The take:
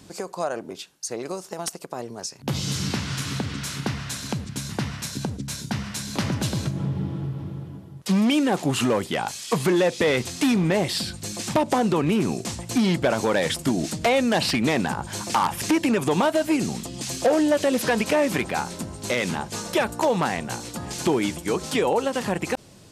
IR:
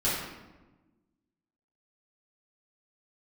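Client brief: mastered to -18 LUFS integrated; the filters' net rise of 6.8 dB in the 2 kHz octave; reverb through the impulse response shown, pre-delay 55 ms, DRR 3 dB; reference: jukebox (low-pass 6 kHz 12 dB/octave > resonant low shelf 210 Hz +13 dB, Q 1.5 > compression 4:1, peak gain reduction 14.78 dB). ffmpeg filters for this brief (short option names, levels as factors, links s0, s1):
-filter_complex "[0:a]equalizer=f=2000:t=o:g=8.5,asplit=2[s0][s1];[1:a]atrim=start_sample=2205,adelay=55[s2];[s1][s2]afir=irnorm=-1:irlink=0,volume=0.2[s3];[s0][s3]amix=inputs=2:normalize=0,lowpass=6000,lowshelf=f=210:t=q:w=1.5:g=13,acompressor=threshold=0.0794:ratio=4,volume=2.24"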